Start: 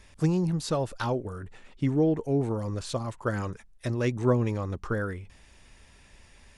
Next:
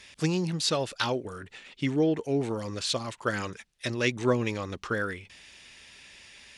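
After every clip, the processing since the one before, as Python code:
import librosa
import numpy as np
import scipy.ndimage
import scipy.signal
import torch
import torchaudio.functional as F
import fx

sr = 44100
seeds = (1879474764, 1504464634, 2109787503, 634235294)

y = fx.weighting(x, sr, curve='D')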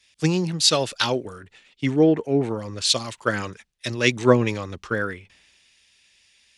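y = fx.band_widen(x, sr, depth_pct=70)
y = y * librosa.db_to_amplitude(5.0)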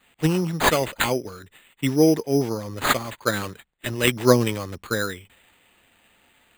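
y = np.repeat(x[::8], 8)[:len(x)]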